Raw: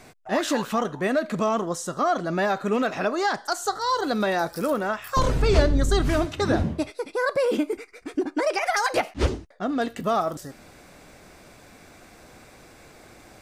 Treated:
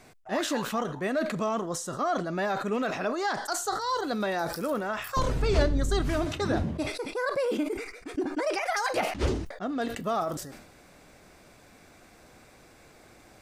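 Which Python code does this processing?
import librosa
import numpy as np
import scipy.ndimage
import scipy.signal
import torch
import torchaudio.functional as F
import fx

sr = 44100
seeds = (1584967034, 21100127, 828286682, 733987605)

y = fx.sustainer(x, sr, db_per_s=66.0)
y = y * 10.0 ** (-5.5 / 20.0)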